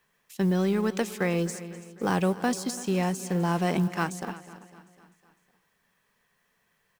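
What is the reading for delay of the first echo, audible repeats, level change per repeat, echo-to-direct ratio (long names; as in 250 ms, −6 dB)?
252 ms, 5, repeats not evenly spaced, −13.5 dB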